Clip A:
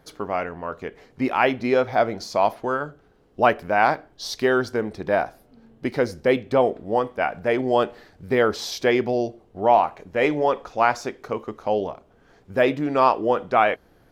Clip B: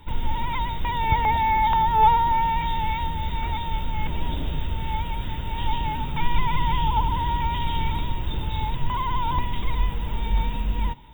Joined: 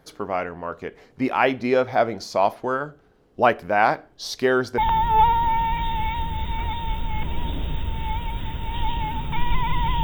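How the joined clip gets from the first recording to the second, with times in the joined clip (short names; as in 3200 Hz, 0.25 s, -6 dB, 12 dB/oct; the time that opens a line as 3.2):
clip A
4.78 switch to clip B from 1.62 s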